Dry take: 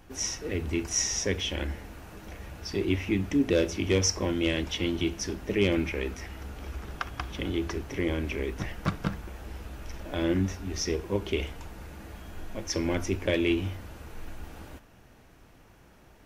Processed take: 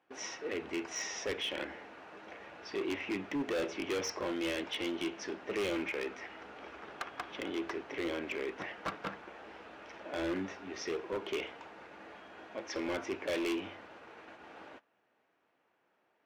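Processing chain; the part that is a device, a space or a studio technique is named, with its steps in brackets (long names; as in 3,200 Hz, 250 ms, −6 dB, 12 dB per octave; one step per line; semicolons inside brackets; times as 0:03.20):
walkie-talkie (band-pass filter 420–2,900 Hz; hard clipping −30.5 dBFS, distortion −8 dB; noise gate −52 dBFS, range −14 dB)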